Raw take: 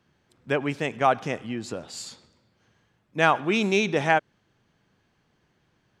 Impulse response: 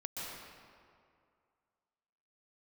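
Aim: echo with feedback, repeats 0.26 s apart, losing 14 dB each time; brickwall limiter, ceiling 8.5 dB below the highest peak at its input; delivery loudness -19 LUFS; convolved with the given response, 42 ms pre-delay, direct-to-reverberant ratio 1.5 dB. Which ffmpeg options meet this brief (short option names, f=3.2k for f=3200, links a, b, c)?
-filter_complex "[0:a]alimiter=limit=-12.5dB:level=0:latency=1,aecho=1:1:260|520:0.2|0.0399,asplit=2[a][b];[1:a]atrim=start_sample=2205,adelay=42[c];[b][c]afir=irnorm=-1:irlink=0,volume=-2.5dB[d];[a][d]amix=inputs=2:normalize=0,volume=6.5dB"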